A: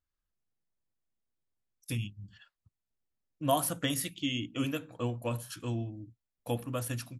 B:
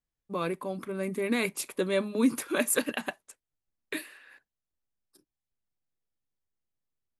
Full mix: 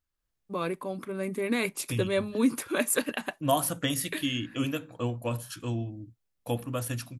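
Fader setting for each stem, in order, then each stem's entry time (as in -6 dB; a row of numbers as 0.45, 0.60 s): +2.5, 0.0 dB; 0.00, 0.20 s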